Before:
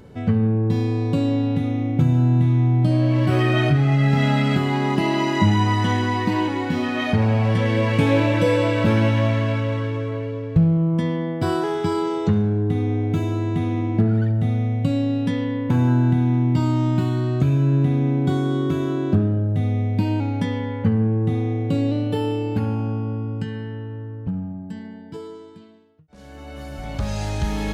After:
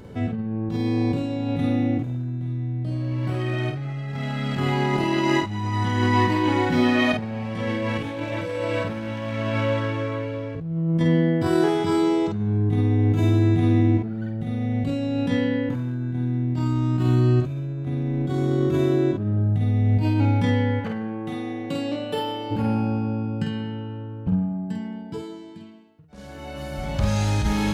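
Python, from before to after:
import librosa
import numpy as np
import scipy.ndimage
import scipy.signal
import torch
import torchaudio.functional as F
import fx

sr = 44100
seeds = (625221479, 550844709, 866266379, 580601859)

y = np.minimum(x, 2.0 * 10.0 ** (-11.0 / 20.0) - x)
y = fx.highpass(y, sr, hz=fx.line((20.79, 990.0), (22.5, 460.0)), slope=6, at=(20.79, 22.5), fade=0.02)
y = fx.over_compress(y, sr, threshold_db=-22.0, ratio=-0.5)
y = fx.doubler(y, sr, ms=49.0, db=-4.0)
y = y * 10.0 ** (-1.0 / 20.0)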